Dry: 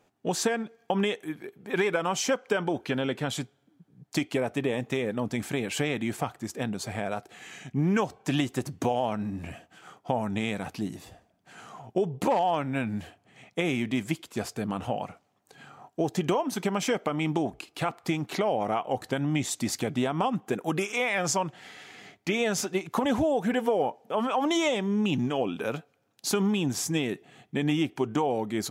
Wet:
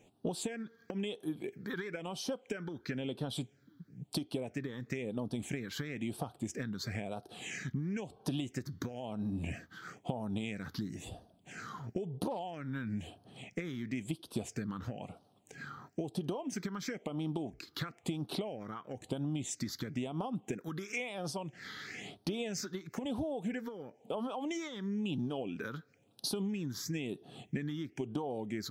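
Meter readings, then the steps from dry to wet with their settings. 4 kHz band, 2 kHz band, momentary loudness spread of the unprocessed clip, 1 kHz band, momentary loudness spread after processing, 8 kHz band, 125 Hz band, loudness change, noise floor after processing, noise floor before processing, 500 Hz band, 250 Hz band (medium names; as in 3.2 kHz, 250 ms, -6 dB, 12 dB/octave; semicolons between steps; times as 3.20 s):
-9.0 dB, -11.0 dB, 10 LU, -15.5 dB, 8 LU, -10.5 dB, -7.0 dB, -10.5 dB, -68 dBFS, -69 dBFS, -12.5 dB, -8.5 dB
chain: compression 16:1, threshold -37 dBFS, peak gain reduction 17.5 dB; phase shifter stages 6, 1 Hz, lowest notch 670–2100 Hz; trim +4.5 dB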